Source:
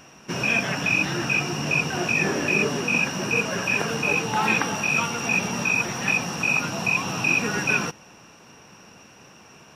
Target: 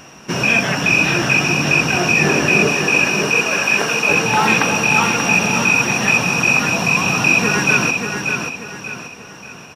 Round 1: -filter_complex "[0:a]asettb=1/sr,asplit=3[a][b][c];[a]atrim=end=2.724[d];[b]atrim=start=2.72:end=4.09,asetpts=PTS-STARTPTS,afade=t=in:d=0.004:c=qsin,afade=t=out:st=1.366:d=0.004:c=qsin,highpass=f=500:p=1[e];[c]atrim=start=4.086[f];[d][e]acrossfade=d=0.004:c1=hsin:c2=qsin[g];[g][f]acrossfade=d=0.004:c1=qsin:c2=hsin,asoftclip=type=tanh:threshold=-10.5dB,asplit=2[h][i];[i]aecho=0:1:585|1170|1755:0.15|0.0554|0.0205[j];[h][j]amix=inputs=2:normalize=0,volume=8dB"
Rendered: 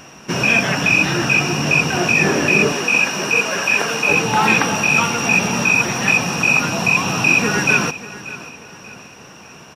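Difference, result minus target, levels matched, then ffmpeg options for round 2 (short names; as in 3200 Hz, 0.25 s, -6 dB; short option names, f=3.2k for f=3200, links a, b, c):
echo-to-direct -11 dB
-filter_complex "[0:a]asettb=1/sr,asplit=3[a][b][c];[a]atrim=end=2.724[d];[b]atrim=start=2.72:end=4.09,asetpts=PTS-STARTPTS,afade=t=in:d=0.004:c=qsin,afade=t=out:st=1.366:d=0.004:c=qsin,highpass=f=500:p=1[e];[c]atrim=start=4.086[f];[d][e]acrossfade=d=0.004:c1=hsin:c2=qsin[g];[g][f]acrossfade=d=0.004:c1=qsin:c2=hsin,asoftclip=type=tanh:threshold=-10.5dB,asplit=2[h][i];[i]aecho=0:1:585|1170|1755|2340:0.531|0.196|0.0727|0.0269[j];[h][j]amix=inputs=2:normalize=0,volume=8dB"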